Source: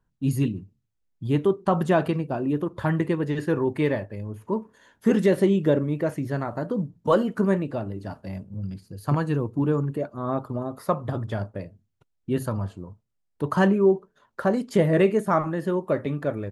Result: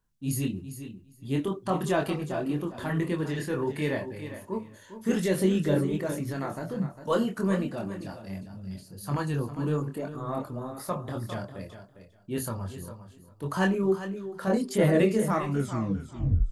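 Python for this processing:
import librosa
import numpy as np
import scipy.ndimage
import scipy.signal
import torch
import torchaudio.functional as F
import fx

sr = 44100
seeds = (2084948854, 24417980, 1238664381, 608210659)

p1 = fx.tape_stop_end(x, sr, length_s=1.14)
p2 = fx.high_shelf(p1, sr, hz=3100.0, db=11.5)
p3 = fx.transient(p2, sr, attack_db=-4, sustain_db=2)
p4 = p3 + fx.echo_feedback(p3, sr, ms=403, feedback_pct=16, wet_db=-11.0, dry=0)
p5 = fx.chorus_voices(p4, sr, voices=6, hz=1.4, base_ms=24, depth_ms=3.0, mix_pct=40)
y = p5 * librosa.db_to_amplitude(-2.0)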